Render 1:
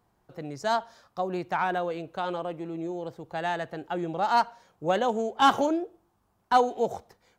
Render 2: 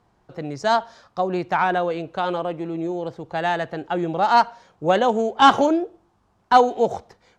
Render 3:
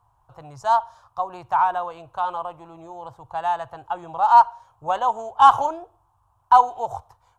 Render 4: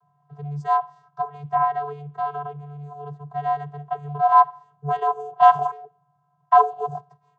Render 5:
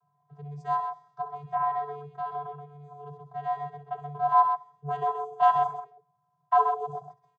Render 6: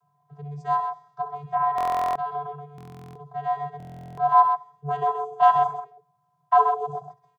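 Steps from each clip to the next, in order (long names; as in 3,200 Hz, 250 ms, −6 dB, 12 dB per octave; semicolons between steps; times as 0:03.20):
low-pass filter 6,700 Hz 12 dB per octave; level +7 dB
drawn EQ curve 120 Hz 0 dB, 190 Hz −24 dB, 300 Hz −21 dB, 440 Hz −19 dB, 990 Hz +5 dB, 2,000 Hz −18 dB, 2,900 Hz −10 dB, 4,700 Hz −14 dB, 11,000 Hz +3 dB; level +1.5 dB
channel vocoder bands 16, square 145 Hz
loudspeakers that aren't time-aligned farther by 22 metres −11 dB, 44 metres −7 dB; level −7.5 dB
buffer that repeats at 0:01.76/0:02.76/0:03.78, samples 1,024, times 16; level +4 dB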